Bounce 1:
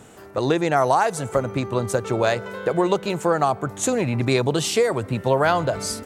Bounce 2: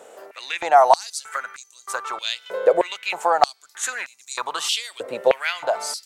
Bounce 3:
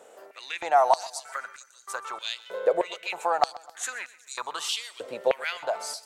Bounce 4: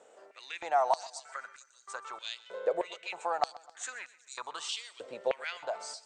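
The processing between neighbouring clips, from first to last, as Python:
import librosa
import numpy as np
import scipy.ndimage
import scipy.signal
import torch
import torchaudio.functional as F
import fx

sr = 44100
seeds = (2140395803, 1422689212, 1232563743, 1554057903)

y1 = fx.filter_held_highpass(x, sr, hz=3.2, low_hz=540.0, high_hz=6600.0)
y1 = y1 * librosa.db_to_amplitude(-1.5)
y2 = fx.echo_feedback(y1, sr, ms=129, feedback_pct=49, wet_db=-20.0)
y2 = y2 * librosa.db_to_amplitude(-6.5)
y3 = scipy.signal.sosfilt(scipy.signal.butter(16, 8900.0, 'lowpass', fs=sr, output='sos'), y2)
y3 = y3 * librosa.db_to_amplitude(-7.0)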